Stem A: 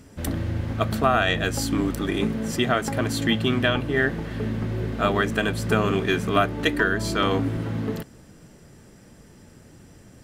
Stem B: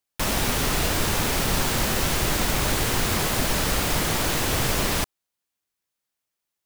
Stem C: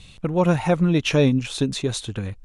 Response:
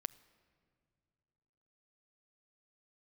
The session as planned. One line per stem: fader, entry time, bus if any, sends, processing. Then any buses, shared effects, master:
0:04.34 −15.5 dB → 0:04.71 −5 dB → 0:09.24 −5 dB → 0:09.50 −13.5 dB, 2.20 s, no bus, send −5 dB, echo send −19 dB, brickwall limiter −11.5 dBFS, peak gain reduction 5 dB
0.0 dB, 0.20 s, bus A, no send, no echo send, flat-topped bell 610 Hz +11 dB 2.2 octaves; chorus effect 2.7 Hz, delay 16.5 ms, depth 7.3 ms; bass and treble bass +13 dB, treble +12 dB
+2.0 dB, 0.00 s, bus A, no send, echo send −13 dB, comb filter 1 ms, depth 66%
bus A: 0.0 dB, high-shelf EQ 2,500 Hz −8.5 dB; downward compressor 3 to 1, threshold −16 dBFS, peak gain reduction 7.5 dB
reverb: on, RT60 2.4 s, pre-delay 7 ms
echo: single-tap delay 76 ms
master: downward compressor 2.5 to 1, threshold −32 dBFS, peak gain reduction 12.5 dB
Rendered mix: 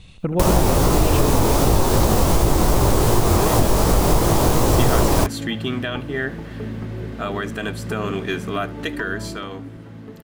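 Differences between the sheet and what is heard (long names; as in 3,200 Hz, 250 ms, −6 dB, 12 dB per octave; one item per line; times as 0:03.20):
stem B 0.0 dB → +11.0 dB
stem C: missing comb filter 1 ms, depth 66%
master: missing downward compressor 2.5 to 1, threshold −32 dBFS, peak gain reduction 12.5 dB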